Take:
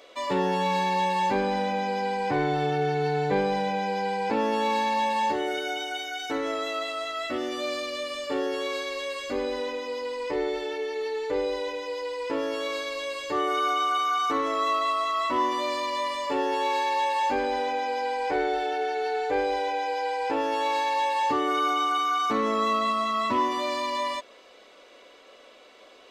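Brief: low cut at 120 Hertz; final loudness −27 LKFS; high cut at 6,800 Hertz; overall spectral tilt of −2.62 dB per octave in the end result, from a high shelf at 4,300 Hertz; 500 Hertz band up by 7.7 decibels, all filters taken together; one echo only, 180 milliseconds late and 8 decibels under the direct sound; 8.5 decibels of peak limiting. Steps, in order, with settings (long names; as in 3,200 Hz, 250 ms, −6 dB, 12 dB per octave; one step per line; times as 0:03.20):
high-pass filter 120 Hz
low-pass filter 6,800 Hz
parametric band 500 Hz +9 dB
high-shelf EQ 4,300 Hz −6 dB
brickwall limiter −14.5 dBFS
single-tap delay 180 ms −8 dB
level −4.5 dB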